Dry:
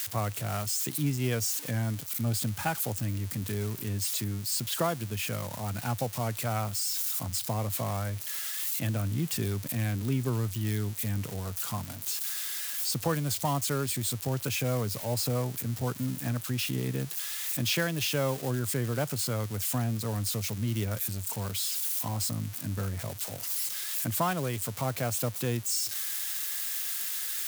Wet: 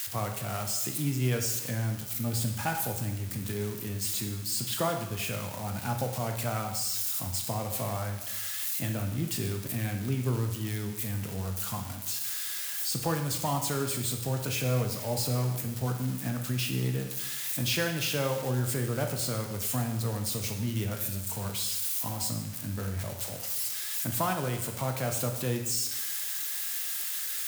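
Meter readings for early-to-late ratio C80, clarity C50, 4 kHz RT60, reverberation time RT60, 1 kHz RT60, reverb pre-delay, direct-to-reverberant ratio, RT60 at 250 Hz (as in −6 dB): 9.0 dB, 6.5 dB, 0.95 s, 1.0 s, 1.0 s, 5 ms, 3.5 dB, 1.0 s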